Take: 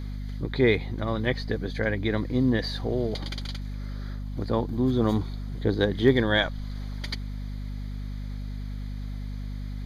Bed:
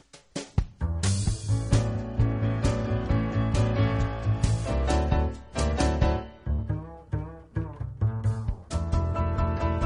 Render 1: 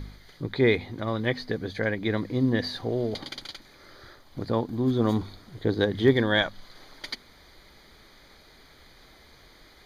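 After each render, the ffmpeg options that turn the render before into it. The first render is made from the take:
-af "bandreject=f=50:t=h:w=4,bandreject=f=100:t=h:w=4,bandreject=f=150:t=h:w=4,bandreject=f=200:t=h:w=4,bandreject=f=250:t=h:w=4"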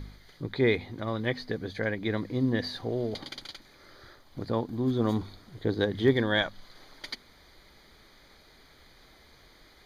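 -af "volume=0.708"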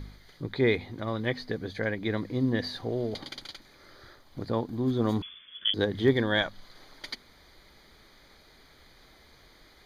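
-filter_complex "[0:a]asettb=1/sr,asplit=3[s0][s1][s2];[s0]atrim=end=5.224[s3];[s1]atrim=start=5.22:end=5.74,asetpts=PTS-STARTPTS,afade=t=in:d=0.004:c=qsin,afade=t=out:st=0.516:d=0.004:c=qsin,lowpass=f=3000:t=q:w=0.5098,lowpass=f=3000:t=q:w=0.6013,lowpass=f=3000:t=q:w=0.9,lowpass=f=3000:t=q:w=2.563,afreqshift=-3500[s4];[s2]atrim=start=5.736[s5];[s3][s4]acrossfade=d=0.004:c1=hsin:c2=qsin[s6];[s6][s5]acrossfade=d=0.004:c1=qsin:c2=hsin"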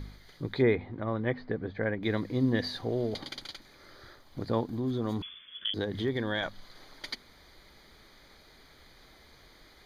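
-filter_complex "[0:a]asettb=1/sr,asplit=3[s0][s1][s2];[s0]atrim=end=0.624[s3];[s1]atrim=start=0.62:end=2.03,asetpts=PTS-STARTPTS,afade=t=in:d=0.004:c=qsin,afade=t=out:st=1.406:d=0.004:c=qsin,lowpass=1800[s4];[s2]atrim=start=2.026[s5];[s3][s4]acrossfade=d=0.004:c1=hsin:c2=qsin[s6];[s6][s5]acrossfade=d=0.004:c1=qsin:c2=hsin,asettb=1/sr,asplit=3[s7][s8][s9];[s7]atrim=end=4.694[s10];[s8]atrim=start=4.69:end=6.43,asetpts=PTS-STARTPTS,afade=t=in:d=0.004:c=qsin,afade=t=out:st=1.736:d=0.004:c=qsin,acompressor=threshold=0.0355:ratio=2.5:attack=3.2:release=140:knee=1:detection=peak[s11];[s9]atrim=start=6.426[s12];[s10][s11]acrossfade=d=0.004:c1=hsin:c2=qsin[s13];[s13][s12]acrossfade=d=0.004:c1=qsin:c2=hsin"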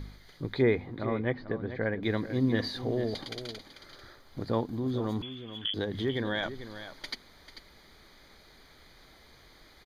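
-af "aecho=1:1:442:0.251"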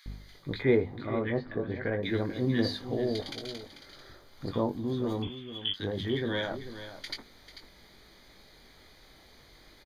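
-filter_complex "[0:a]asplit=2[s0][s1];[s1]adelay=21,volume=0.447[s2];[s0][s2]amix=inputs=2:normalize=0,acrossover=split=1300[s3][s4];[s3]adelay=60[s5];[s5][s4]amix=inputs=2:normalize=0"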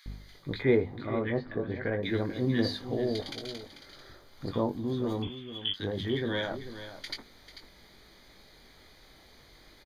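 -af anull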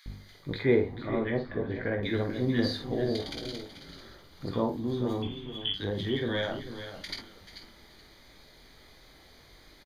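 -filter_complex "[0:a]asplit=2[s0][s1];[s1]adelay=49,volume=0.422[s2];[s0][s2]amix=inputs=2:normalize=0,asplit=4[s3][s4][s5][s6];[s4]adelay=432,afreqshift=-100,volume=0.158[s7];[s5]adelay=864,afreqshift=-200,volume=0.0569[s8];[s6]adelay=1296,afreqshift=-300,volume=0.0207[s9];[s3][s7][s8][s9]amix=inputs=4:normalize=0"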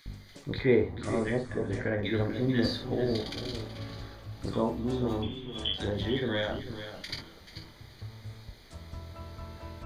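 -filter_complex "[1:a]volume=0.141[s0];[0:a][s0]amix=inputs=2:normalize=0"

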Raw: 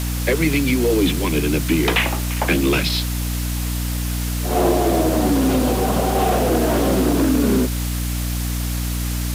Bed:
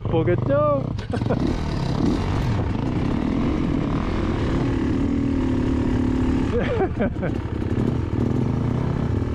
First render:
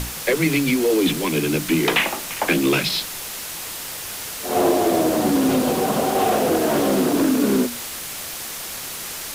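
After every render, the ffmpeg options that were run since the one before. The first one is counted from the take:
-af "bandreject=f=60:t=h:w=6,bandreject=f=120:t=h:w=6,bandreject=f=180:t=h:w=6,bandreject=f=240:t=h:w=6,bandreject=f=300:t=h:w=6"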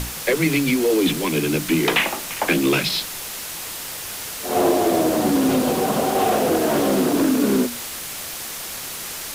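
-af anull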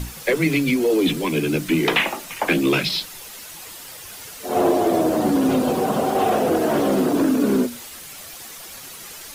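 -af "afftdn=nr=9:nf=-32"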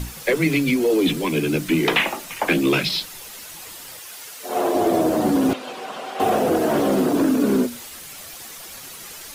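-filter_complex "[0:a]asettb=1/sr,asplit=3[s0][s1][s2];[s0]atrim=end=3.994[s3];[s1]atrim=start=3.99:end=4.75,asetpts=PTS-STARTPTS,afade=t=in:d=0.004:c=qsin,afade=t=out:st=0.756:d=0.004:c=qsin,highpass=f=530:p=1[s4];[s2]atrim=start=4.746[s5];[s3][s4]acrossfade=d=0.004:c1=hsin:c2=qsin[s6];[s6][s5]acrossfade=d=0.004:c1=qsin:c2=hsin,asettb=1/sr,asplit=3[s7][s8][s9];[s7]atrim=end=5.534[s10];[s8]atrim=start=5.53:end=6.2,asetpts=PTS-STARTPTS,afade=t=in:d=0.004:c=qsin,afade=t=out:st=0.666:d=0.004:c=qsin,bandpass=f=2600:t=q:w=0.91[s11];[s9]atrim=start=6.196[s12];[s10][s11]acrossfade=d=0.004:c1=hsin:c2=qsin[s13];[s13][s12]acrossfade=d=0.004:c1=qsin:c2=hsin"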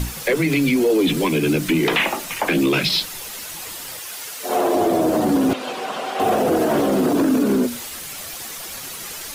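-af "acontrast=32,alimiter=limit=0.299:level=0:latency=1:release=91"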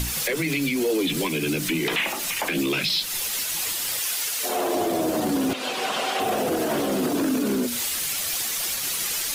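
-filter_complex "[0:a]acrossover=split=1900[s0][s1];[s1]acontrast=85[s2];[s0][s2]amix=inputs=2:normalize=0,alimiter=limit=0.158:level=0:latency=1:release=199"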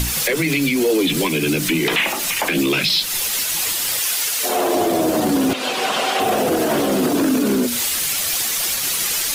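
-af "volume=2"

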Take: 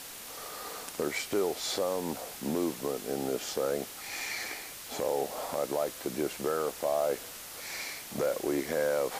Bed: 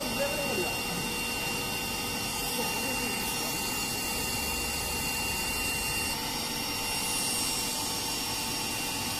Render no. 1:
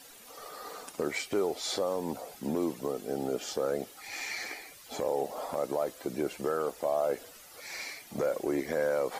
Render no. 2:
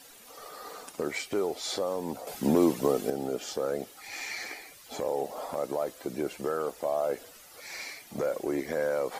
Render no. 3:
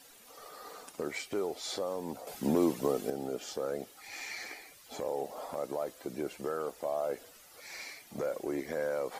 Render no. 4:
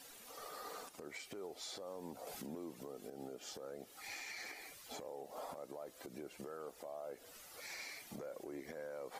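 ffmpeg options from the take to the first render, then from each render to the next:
-af "afftdn=nr=12:nf=-45"
-filter_complex "[0:a]asplit=3[s0][s1][s2];[s0]atrim=end=2.272[s3];[s1]atrim=start=2.268:end=3.102,asetpts=PTS-STARTPTS,volume=2.51[s4];[s2]atrim=start=3.098[s5];[s3][s4]acrossfade=d=0.004:c1=hsin:c2=hsin[s6];[s6][s5]acrossfade=d=0.004:c1=hsin:c2=hsin"
-af "volume=0.596"
-af "acompressor=threshold=0.00794:ratio=5,alimiter=level_in=4.73:limit=0.0631:level=0:latency=1:release=143,volume=0.211"

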